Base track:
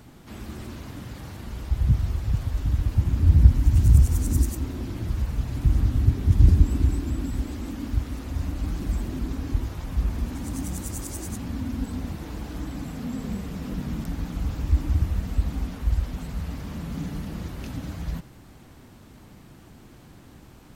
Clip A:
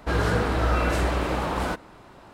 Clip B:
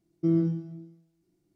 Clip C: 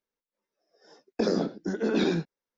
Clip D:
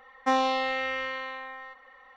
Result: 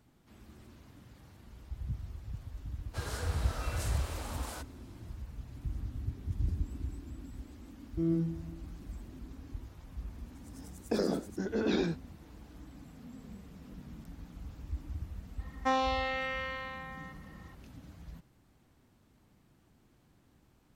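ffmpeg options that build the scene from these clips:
ffmpeg -i bed.wav -i cue0.wav -i cue1.wav -i cue2.wav -i cue3.wav -filter_complex "[0:a]volume=-17.5dB[link_01];[1:a]bass=frequency=250:gain=-15,treble=frequency=4000:gain=15[link_02];[2:a]dynaudnorm=framelen=230:gausssize=3:maxgain=7dB[link_03];[link_02]atrim=end=2.33,asetpts=PTS-STARTPTS,volume=-16.5dB,afade=type=in:duration=0.1,afade=type=out:start_time=2.23:duration=0.1,adelay=2870[link_04];[link_03]atrim=end=1.55,asetpts=PTS-STARTPTS,volume=-10.5dB,afade=type=in:duration=0.004:curve=hsin,afade=type=out:start_time=1.546:duration=0.004:curve=hsin,adelay=7740[link_05];[3:a]atrim=end=2.57,asetpts=PTS-STARTPTS,volume=-5dB,afade=type=in:duration=0.004:curve=hsin,afade=type=out:start_time=2.566:duration=0.004:curve=hsin,adelay=9720[link_06];[4:a]atrim=end=2.16,asetpts=PTS-STARTPTS,volume=-5dB,afade=type=in:duration=0.004:curve=hsin,afade=type=out:start_time=2.156:duration=0.004:curve=hsin,adelay=15390[link_07];[link_01][link_04][link_05][link_06][link_07]amix=inputs=5:normalize=0" out.wav

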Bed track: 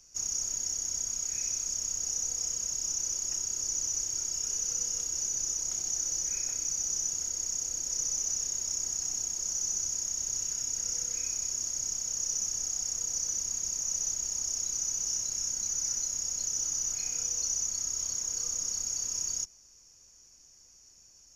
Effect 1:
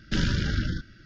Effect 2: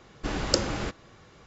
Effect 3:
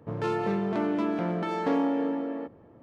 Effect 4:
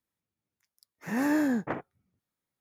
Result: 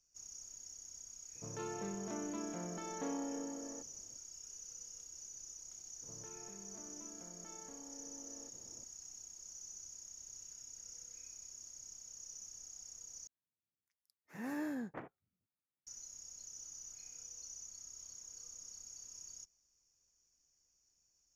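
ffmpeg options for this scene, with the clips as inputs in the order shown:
ffmpeg -i bed.wav -i cue0.wav -i cue1.wav -i cue2.wav -i cue3.wav -filter_complex "[3:a]asplit=2[link_01][link_02];[0:a]volume=-19dB[link_03];[link_02]acompressor=threshold=-44dB:ratio=6:attack=3.2:release=140:knee=1:detection=peak[link_04];[link_03]asplit=2[link_05][link_06];[link_05]atrim=end=13.274[link_07];[4:a]atrim=end=2.6,asetpts=PTS-STARTPTS,volume=-14dB[link_08];[link_06]atrim=start=15.866[link_09];[link_01]atrim=end=2.82,asetpts=PTS-STARTPTS,volume=-15dB,afade=type=in:duration=0.004:curve=hsin,afade=type=out:start_time=2.816:duration=0.004:curve=hsin,adelay=1350[link_10];[link_04]atrim=end=2.82,asetpts=PTS-STARTPTS,volume=-10dB,afade=type=in:duration=0.004:curve=hsin,afade=type=out:start_time=2.816:duration=0.004:curve=hsin,adelay=6020[link_11];[link_07][link_08]acrossfade=duration=0.004:curve1=hsin:curve2=hsin[link_12];[link_12][link_09]acrossfade=duration=0.004:curve1=hsin:curve2=hsin[link_13];[link_13][link_10][link_11]amix=inputs=3:normalize=0" out.wav

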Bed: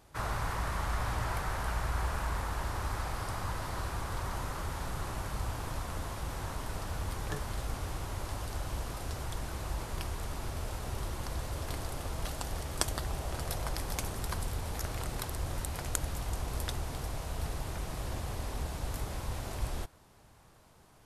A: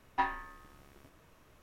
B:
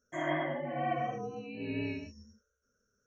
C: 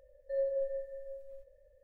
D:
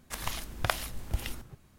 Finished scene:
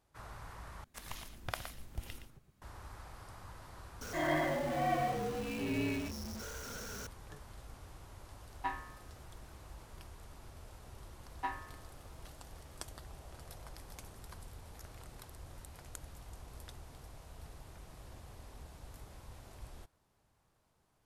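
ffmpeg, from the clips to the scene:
ffmpeg -i bed.wav -i cue0.wav -i cue1.wav -i cue2.wav -i cue3.wav -filter_complex "[1:a]asplit=2[link_01][link_02];[0:a]volume=-15dB[link_03];[4:a]asplit=2[link_04][link_05];[link_05]adelay=116.6,volume=-9dB,highshelf=frequency=4000:gain=-2.62[link_06];[link_04][link_06]amix=inputs=2:normalize=0[link_07];[2:a]aeval=exprs='val(0)+0.5*0.0133*sgn(val(0))':channel_layout=same[link_08];[link_03]asplit=2[link_09][link_10];[link_09]atrim=end=0.844[link_11];[link_07]atrim=end=1.78,asetpts=PTS-STARTPTS,volume=-11dB[link_12];[link_10]atrim=start=2.616[link_13];[link_08]atrim=end=3.06,asetpts=PTS-STARTPTS,volume=-1.5dB,afade=type=in:duration=0.004:curve=hsin,afade=type=out:start_time=3.056:duration=0.004:curve=hsin,adelay=176841S[link_14];[link_01]atrim=end=1.62,asetpts=PTS-STARTPTS,volume=-7dB,afade=type=in:duration=0.004:curve=hsin,afade=type=out:start_time=1.616:duration=0.004:curve=hsin,adelay=8460[link_15];[link_02]atrim=end=1.62,asetpts=PTS-STARTPTS,volume=-7.5dB,afade=type=in:duration=0.004:curve=hsin,afade=type=out:start_time=1.616:duration=0.004:curve=hsin,adelay=11250[link_16];[link_11][link_12]acrossfade=duration=0.004:curve1=hsin:curve2=hsin[link_17];[link_17][link_13]acrossfade=duration=0.004:curve1=hsin:curve2=hsin[link_18];[link_18][link_14][link_15][link_16]amix=inputs=4:normalize=0" out.wav

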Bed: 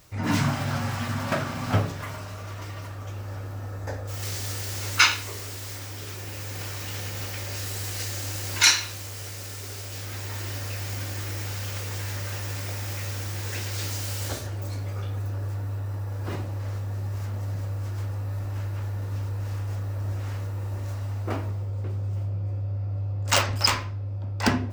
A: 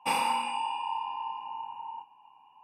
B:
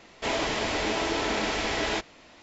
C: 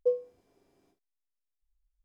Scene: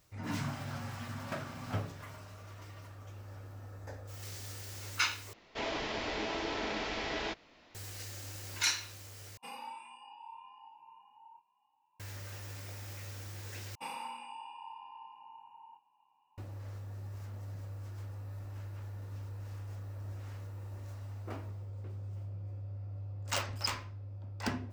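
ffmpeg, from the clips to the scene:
ffmpeg -i bed.wav -i cue0.wav -i cue1.wav -filter_complex "[1:a]asplit=2[link_01][link_02];[0:a]volume=-13dB[link_03];[2:a]lowpass=frequency=5800:width=0.5412,lowpass=frequency=5800:width=1.3066[link_04];[link_01]asplit=2[link_05][link_06];[link_06]adelay=2.5,afreqshift=1.9[link_07];[link_05][link_07]amix=inputs=2:normalize=1[link_08];[link_03]asplit=4[link_09][link_10][link_11][link_12];[link_09]atrim=end=5.334[link_13];[link_04]atrim=end=2.42,asetpts=PTS-STARTPTS,volume=-8.5dB[link_14];[link_10]atrim=start=7.746:end=9.374[link_15];[link_08]atrim=end=2.63,asetpts=PTS-STARTPTS,volume=-15dB[link_16];[link_11]atrim=start=11.996:end=13.754[link_17];[link_02]atrim=end=2.63,asetpts=PTS-STARTPTS,volume=-14.5dB[link_18];[link_12]atrim=start=16.376[link_19];[link_13][link_14]acrossfade=duration=0.004:curve1=hsin:curve2=hsin[link_20];[link_20][link_15]acrossfade=duration=0.004:curve1=hsin:curve2=hsin[link_21];[link_21][link_16]acrossfade=duration=0.004:curve1=hsin:curve2=hsin[link_22];[link_22][link_17]acrossfade=duration=0.004:curve1=hsin:curve2=hsin[link_23];[link_23][link_18]acrossfade=duration=0.004:curve1=hsin:curve2=hsin[link_24];[link_24][link_19]acrossfade=duration=0.004:curve1=hsin:curve2=hsin" out.wav

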